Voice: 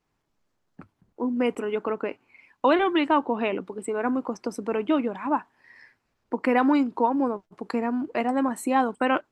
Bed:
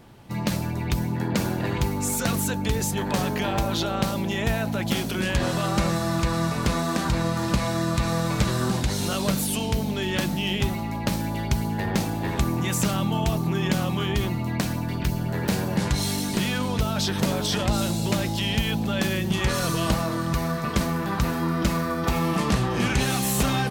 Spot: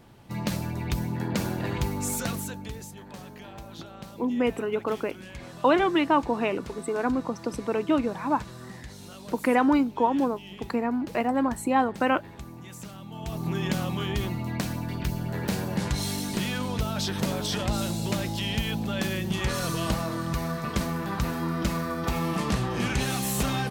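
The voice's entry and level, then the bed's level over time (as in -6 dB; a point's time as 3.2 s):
3.00 s, -0.5 dB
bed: 2.15 s -3.5 dB
2.99 s -18 dB
13.06 s -18 dB
13.48 s -4 dB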